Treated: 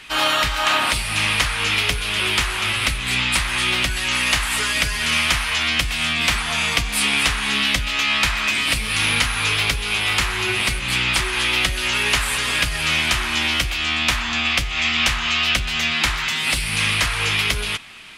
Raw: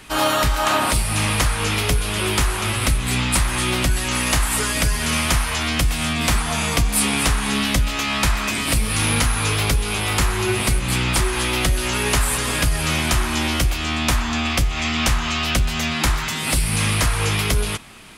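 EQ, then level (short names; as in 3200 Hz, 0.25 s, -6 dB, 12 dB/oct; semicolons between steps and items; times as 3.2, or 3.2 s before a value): bell 2700 Hz +13.5 dB 2.4 oct; -7.5 dB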